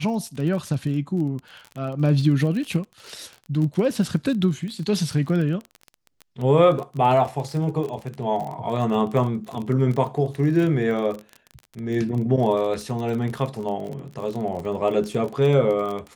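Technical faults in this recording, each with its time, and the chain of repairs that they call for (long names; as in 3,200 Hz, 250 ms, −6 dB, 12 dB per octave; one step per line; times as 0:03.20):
surface crackle 31 per second −28 dBFS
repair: click removal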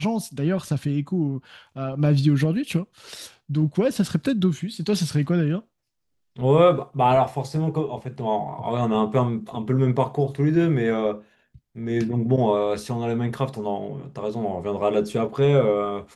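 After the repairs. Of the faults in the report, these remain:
none of them is left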